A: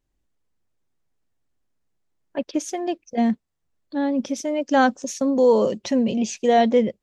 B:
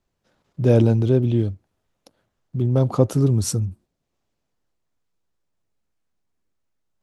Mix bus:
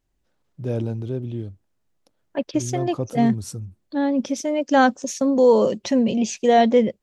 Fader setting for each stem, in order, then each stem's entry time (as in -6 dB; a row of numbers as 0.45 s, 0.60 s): +1.5 dB, -10.0 dB; 0.00 s, 0.00 s